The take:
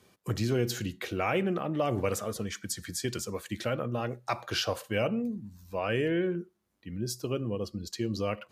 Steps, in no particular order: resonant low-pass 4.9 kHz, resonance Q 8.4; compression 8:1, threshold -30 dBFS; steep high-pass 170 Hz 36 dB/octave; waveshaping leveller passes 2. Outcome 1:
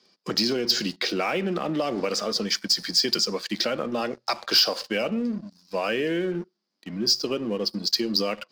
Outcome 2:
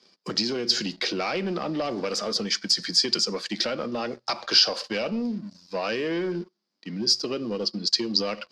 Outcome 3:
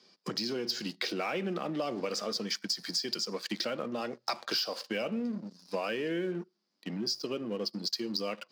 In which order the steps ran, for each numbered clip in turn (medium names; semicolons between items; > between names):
steep high-pass > compression > resonant low-pass > waveshaping leveller; compression > steep high-pass > waveshaping leveller > resonant low-pass; resonant low-pass > waveshaping leveller > compression > steep high-pass